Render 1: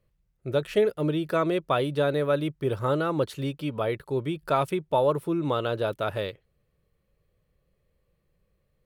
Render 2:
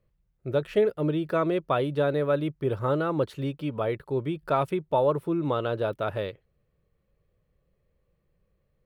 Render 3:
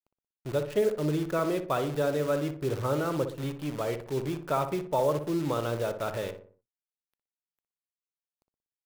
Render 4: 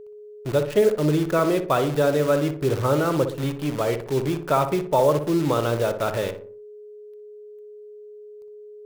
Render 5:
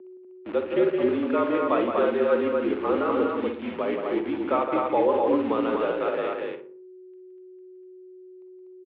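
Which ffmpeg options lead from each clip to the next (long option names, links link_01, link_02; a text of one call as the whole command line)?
ffmpeg -i in.wav -af "equalizer=frequency=10000:width_type=o:width=2.6:gain=-9" out.wav
ffmpeg -i in.wav -filter_complex "[0:a]acrusher=bits=7:dc=4:mix=0:aa=0.000001,asplit=2[link_01][link_02];[link_02]adelay=60,lowpass=frequency=1500:poles=1,volume=-7.5dB,asplit=2[link_03][link_04];[link_04]adelay=60,lowpass=frequency=1500:poles=1,volume=0.47,asplit=2[link_05][link_06];[link_06]adelay=60,lowpass=frequency=1500:poles=1,volume=0.47,asplit=2[link_07][link_08];[link_08]adelay=60,lowpass=frequency=1500:poles=1,volume=0.47,asplit=2[link_09][link_10];[link_10]adelay=60,lowpass=frequency=1500:poles=1,volume=0.47[link_11];[link_03][link_05][link_07][link_09][link_11]amix=inputs=5:normalize=0[link_12];[link_01][link_12]amix=inputs=2:normalize=0,volume=-3.5dB" out.wav
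ffmpeg -i in.wav -af "aeval=exprs='val(0)+0.00447*sin(2*PI*420*n/s)':channel_layout=same,volume=7.5dB" out.wav
ffmpeg -i in.wav -filter_complex "[0:a]asplit=2[link_01][link_02];[link_02]adelay=45,volume=-12.5dB[link_03];[link_01][link_03]amix=inputs=2:normalize=0,highpass=frequency=280:width_type=q:width=0.5412,highpass=frequency=280:width_type=q:width=1.307,lowpass=frequency=3100:width_type=q:width=0.5176,lowpass=frequency=3100:width_type=q:width=0.7071,lowpass=frequency=3100:width_type=q:width=1.932,afreqshift=-51,aecho=1:1:169.1|244.9:0.447|0.708,volume=-3.5dB" out.wav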